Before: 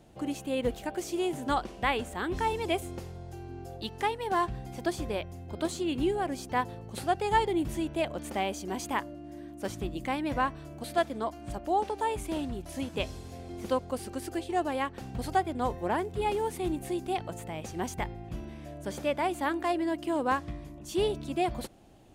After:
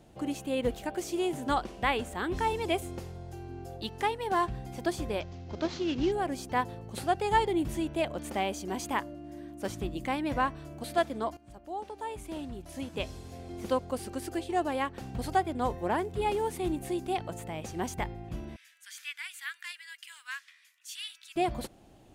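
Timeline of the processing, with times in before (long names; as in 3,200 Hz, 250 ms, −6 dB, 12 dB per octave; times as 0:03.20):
0:05.20–0:06.12: variable-slope delta modulation 32 kbit/s
0:11.37–0:13.67: fade in linear, from −15.5 dB
0:18.56–0:21.36: Butterworth high-pass 1,600 Hz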